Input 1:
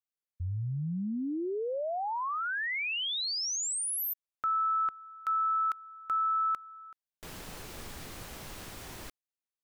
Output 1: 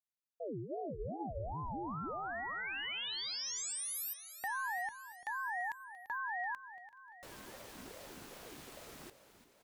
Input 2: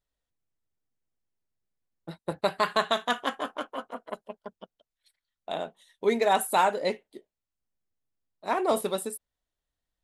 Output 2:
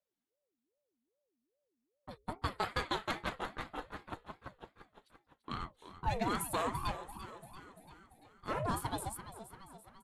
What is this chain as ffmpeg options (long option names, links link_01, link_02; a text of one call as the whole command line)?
ffmpeg -i in.wav -filter_complex "[0:a]bandreject=frequency=60:width_type=h:width=6,bandreject=frequency=120:width_type=h:width=6,bandreject=frequency=180:width_type=h:width=6,bandreject=frequency=240:width_type=h:width=6,bandreject=frequency=300:width_type=h:width=6,acrossover=split=450|3600[link_01][link_02][link_03];[link_02]acompressor=threshold=-35dB:ratio=2.5:attack=84:release=28:knee=2.83:detection=peak[link_04];[link_01][link_04][link_03]amix=inputs=3:normalize=0,asplit=2[link_05][link_06];[link_06]asoftclip=type=hard:threshold=-27.5dB,volume=-10dB[link_07];[link_05][link_07]amix=inputs=2:normalize=0,aecho=1:1:341|682|1023|1364|1705|2046:0.224|0.132|0.0779|0.046|0.0271|0.016,aeval=exprs='val(0)*sin(2*PI*410*n/s+410*0.45/2.5*sin(2*PI*2.5*n/s))':channel_layout=same,volume=-7dB" out.wav